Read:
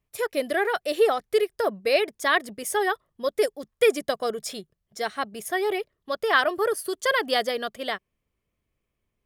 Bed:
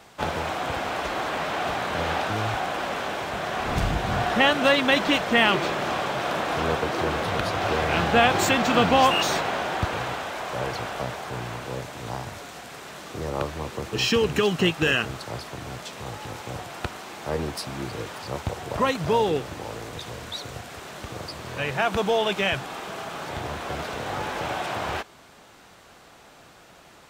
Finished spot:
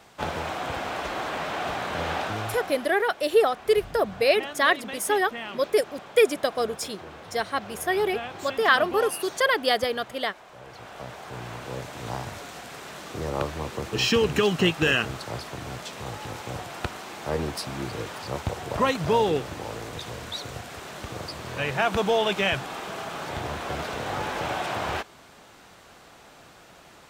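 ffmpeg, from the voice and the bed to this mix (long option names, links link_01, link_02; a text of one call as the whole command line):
ffmpeg -i stem1.wav -i stem2.wav -filter_complex "[0:a]adelay=2350,volume=1dB[link_01];[1:a]volume=14.5dB,afade=type=out:start_time=2.24:duration=0.71:silence=0.188365,afade=type=in:start_time=10.64:duration=1.47:silence=0.141254[link_02];[link_01][link_02]amix=inputs=2:normalize=0" out.wav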